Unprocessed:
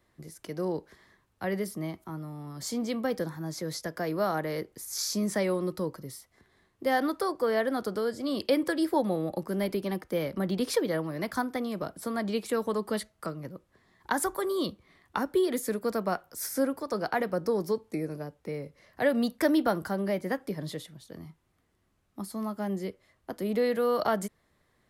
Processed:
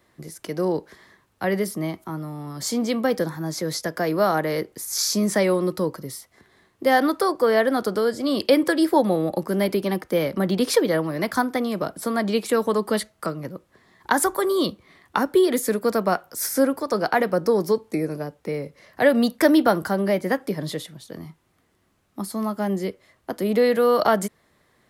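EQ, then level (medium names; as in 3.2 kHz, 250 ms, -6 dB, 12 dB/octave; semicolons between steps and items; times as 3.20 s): bass shelf 76 Hz -11 dB; +8.5 dB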